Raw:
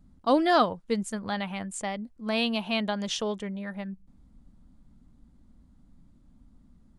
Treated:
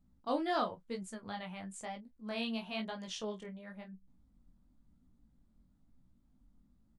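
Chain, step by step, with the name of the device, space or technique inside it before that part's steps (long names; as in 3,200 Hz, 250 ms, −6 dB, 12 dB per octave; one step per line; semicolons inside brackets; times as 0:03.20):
double-tracked vocal (double-tracking delay 27 ms −12.5 dB; chorus effect 0.99 Hz, delay 16 ms, depth 6.2 ms)
level −8.5 dB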